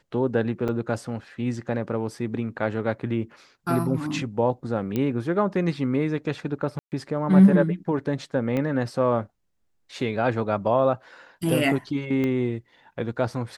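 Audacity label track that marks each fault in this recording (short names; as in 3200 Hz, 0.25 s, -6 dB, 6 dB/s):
0.680000	0.690000	gap 6.7 ms
4.960000	4.960000	pop -14 dBFS
6.790000	6.920000	gap 0.129 s
8.570000	8.570000	pop -16 dBFS
12.240000	12.240000	pop -16 dBFS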